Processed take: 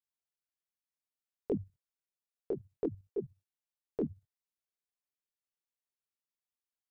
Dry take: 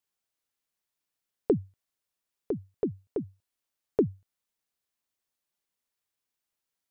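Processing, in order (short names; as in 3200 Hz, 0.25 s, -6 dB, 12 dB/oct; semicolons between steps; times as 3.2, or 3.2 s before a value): level quantiser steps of 14 dB; detuned doubles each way 23 cents; gain +2 dB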